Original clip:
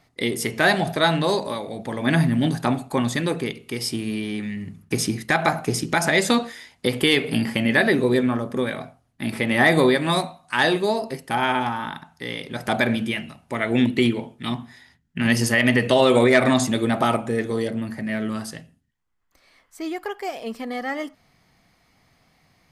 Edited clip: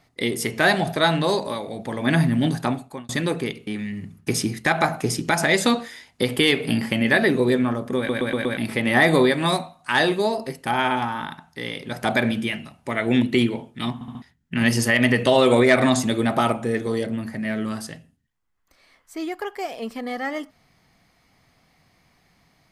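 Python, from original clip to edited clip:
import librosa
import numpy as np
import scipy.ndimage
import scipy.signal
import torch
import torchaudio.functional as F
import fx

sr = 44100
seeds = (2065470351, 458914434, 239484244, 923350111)

y = fx.edit(x, sr, fx.fade_out_span(start_s=2.59, length_s=0.5),
    fx.cut(start_s=3.67, length_s=0.64),
    fx.stutter_over(start_s=8.61, slice_s=0.12, count=5),
    fx.stutter_over(start_s=14.58, slice_s=0.07, count=4), tone=tone)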